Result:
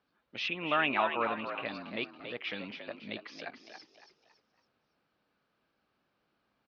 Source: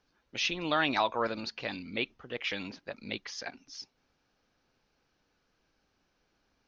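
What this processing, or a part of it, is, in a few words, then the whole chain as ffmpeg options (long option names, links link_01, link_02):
frequency-shifting delay pedal into a guitar cabinet: -filter_complex "[0:a]asplit=5[link_01][link_02][link_03][link_04][link_05];[link_02]adelay=279,afreqshift=62,volume=-8dB[link_06];[link_03]adelay=558,afreqshift=124,volume=-16.4dB[link_07];[link_04]adelay=837,afreqshift=186,volume=-24.8dB[link_08];[link_05]adelay=1116,afreqshift=248,volume=-33.2dB[link_09];[link_01][link_06][link_07][link_08][link_09]amix=inputs=5:normalize=0,highpass=77,equalizer=frequency=83:width_type=q:width=4:gain=-8,equalizer=frequency=210:width_type=q:width=4:gain=3,equalizer=frequency=630:width_type=q:width=4:gain=3,equalizer=frequency=1200:width_type=q:width=4:gain=5,lowpass=frequency=4300:width=0.5412,lowpass=frequency=4300:width=1.3066,asettb=1/sr,asplit=3[link_10][link_11][link_12];[link_10]atrim=end=0.484[link_13];[link_11]atrim=start=0.48:end=1.66,asetpts=PTS-STARTPTS,afade=type=in:duration=0.004:curve=qsin,afade=type=out:start_time=1.176:duration=0.004:curve=qsin,highshelf=frequency=3500:width_type=q:width=3:gain=-9[link_14];[link_12]atrim=start=1.656[link_15];[link_13][link_14]acrossfade=duration=0.004:curve1=hsin:curve2=qsin[link_16];[link_16][link_15]acrossfade=duration=0.004:curve1=qsin:curve2=hsin,volume=-4dB"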